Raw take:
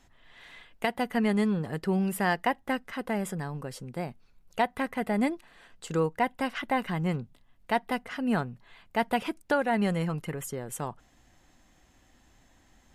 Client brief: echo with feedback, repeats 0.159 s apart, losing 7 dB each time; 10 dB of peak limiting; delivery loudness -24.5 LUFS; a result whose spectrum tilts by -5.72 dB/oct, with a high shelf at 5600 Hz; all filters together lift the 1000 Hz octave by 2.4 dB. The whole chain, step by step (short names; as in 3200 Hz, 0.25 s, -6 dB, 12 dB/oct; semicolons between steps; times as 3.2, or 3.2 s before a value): bell 1000 Hz +3.5 dB; high shelf 5600 Hz -7.5 dB; limiter -22 dBFS; feedback echo 0.159 s, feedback 45%, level -7 dB; gain +8.5 dB